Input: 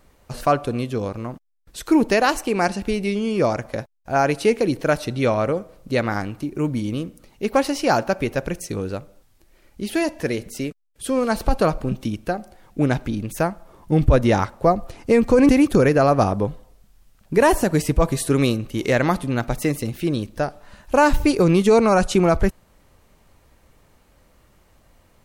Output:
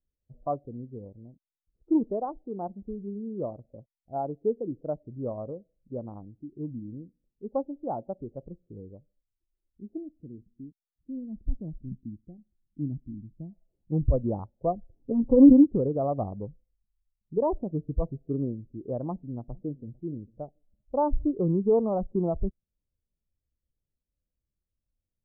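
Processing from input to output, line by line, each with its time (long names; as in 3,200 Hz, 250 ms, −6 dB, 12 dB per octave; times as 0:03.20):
0:09.97–0:13.51: flat-topped bell 950 Hz −11.5 dB 2.7 octaves
0:15.01–0:15.64: comb filter 7.5 ms, depth 88%
0:19.09–0:19.99: delay throw 450 ms, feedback 15%, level −16.5 dB
whole clip: adaptive Wiener filter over 41 samples; Butterworth low-pass 1,100 Hz 36 dB per octave; every bin expanded away from the loudest bin 1.5 to 1; level −4.5 dB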